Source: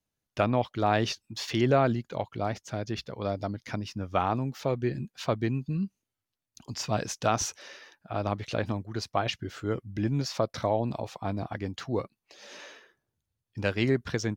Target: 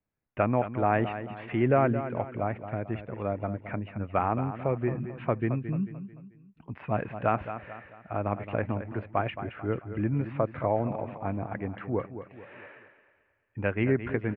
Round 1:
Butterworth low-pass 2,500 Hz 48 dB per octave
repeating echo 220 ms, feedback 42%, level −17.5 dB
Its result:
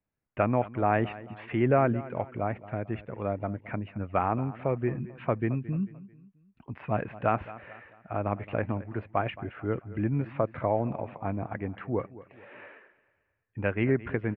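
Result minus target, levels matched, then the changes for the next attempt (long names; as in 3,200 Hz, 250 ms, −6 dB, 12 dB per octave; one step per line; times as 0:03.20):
echo-to-direct −6.5 dB
change: repeating echo 220 ms, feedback 42%, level −11 dB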